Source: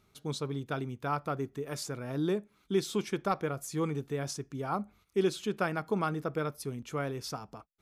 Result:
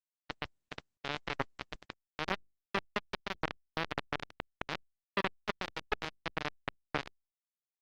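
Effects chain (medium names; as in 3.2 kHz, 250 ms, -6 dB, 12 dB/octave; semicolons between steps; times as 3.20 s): comb 2.2 ms, depth 100%; peak limiter -22.5 dBFS, peak gain reduction 8.5 dB; bit crusher 4-bit; wow and flutter 23 cents; distance through air 270 m; trim +3 dB; Opus 16 kbps 48 kHz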